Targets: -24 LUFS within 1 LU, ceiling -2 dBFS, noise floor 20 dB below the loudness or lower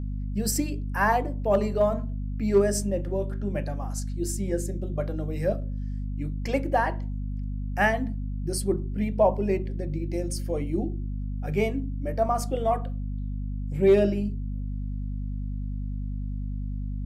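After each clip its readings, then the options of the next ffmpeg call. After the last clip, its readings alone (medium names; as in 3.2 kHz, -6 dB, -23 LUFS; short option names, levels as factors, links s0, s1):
hum 50 Hz; highest harmonic 250 Hz; hum level -28 dBFS; loudness -28.0 LUFS; peak level -9.5 dBFS; loudness target -24.0 LUFS
-> -af "bandreject=f=50:t=h:w=4,bandreject=f=100:t=h:w=4,bandreject=f=150:t=h:w=4,bandreject=f=200:t=h:w=4,bandreject=f=250:t=h:w=4"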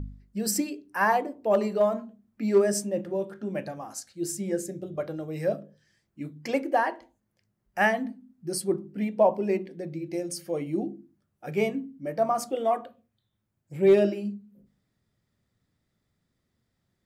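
hum not found; loudness -28.0 LUFS; peak level -10.0 dBFS; loudness target -24.0 LUFS
-> -af "volume=1.58"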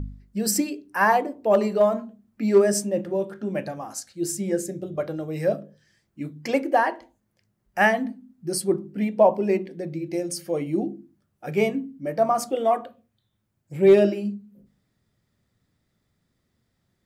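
loudness -24.0 LUFS; peak level -6.0 dBFS; noise floor -74 dBFS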